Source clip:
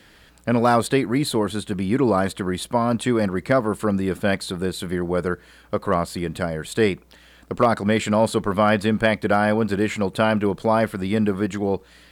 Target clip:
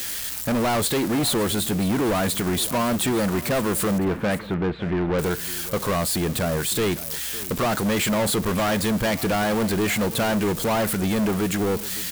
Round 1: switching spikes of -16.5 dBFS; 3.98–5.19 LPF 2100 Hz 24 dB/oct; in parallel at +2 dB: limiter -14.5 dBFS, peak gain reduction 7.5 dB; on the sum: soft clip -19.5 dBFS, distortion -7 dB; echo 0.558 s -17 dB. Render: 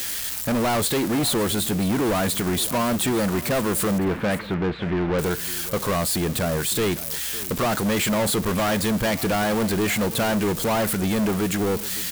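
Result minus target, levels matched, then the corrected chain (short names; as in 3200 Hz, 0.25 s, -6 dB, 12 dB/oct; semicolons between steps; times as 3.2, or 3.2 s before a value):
switching spikes: distortion +7 dB
switching spikes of -24 dBFS; 3.98–5.19 LPF 2100 Hz 24 dB/oct; in parallel at +2 dB: limiter -14.5 dBFS, peak gain reduction 7.5 dB; on the sum: soft clip -19.5 dBFS, distortion -7 dB; echo 0.558 s -17 dB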